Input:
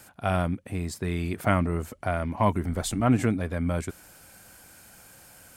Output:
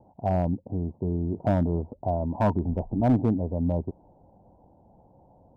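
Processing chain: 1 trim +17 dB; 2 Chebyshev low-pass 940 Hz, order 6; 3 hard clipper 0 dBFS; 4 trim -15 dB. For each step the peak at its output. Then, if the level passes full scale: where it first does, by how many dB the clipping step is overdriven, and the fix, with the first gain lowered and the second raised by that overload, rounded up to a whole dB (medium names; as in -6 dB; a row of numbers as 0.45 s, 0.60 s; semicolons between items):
+10.0 dBFS, +5.5 dBFS, 0.0 dBFS, -15.0 dBFS; step 1, 5.5 dB; step 1 +11 dB, step 4 -9 dB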